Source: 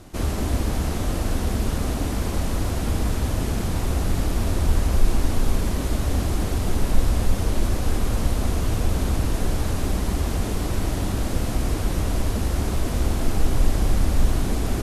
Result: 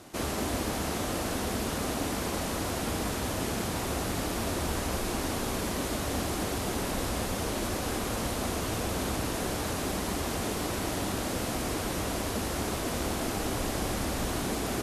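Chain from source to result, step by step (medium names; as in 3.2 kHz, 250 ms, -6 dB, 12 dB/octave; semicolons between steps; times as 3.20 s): high-pass 340 Hz 6 dB/octave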